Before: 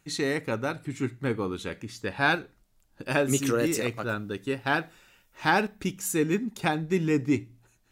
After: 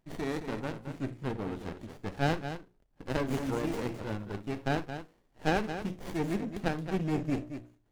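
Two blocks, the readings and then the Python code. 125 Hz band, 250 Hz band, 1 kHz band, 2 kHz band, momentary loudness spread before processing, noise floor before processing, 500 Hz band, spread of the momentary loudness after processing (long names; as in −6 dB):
−2.5 dB, −5.0 dB, −6.5 dB, −10.5 dB, 8 LU, −66 dBFS, −6.0 dB, 11 LU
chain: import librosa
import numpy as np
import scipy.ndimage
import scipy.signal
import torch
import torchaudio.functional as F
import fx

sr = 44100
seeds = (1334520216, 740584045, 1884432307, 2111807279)

y = fx.hum_notches(x, sr, base_hz=60, count=9)
y = fx.echo_multitap(y, sr, ms=(48, 59, 221), db=(-19.5, -19.5, -9.5))
y = fx.running_max(y, sr, window=33)
y = y * librosa.db_to_amplitude(-5.0)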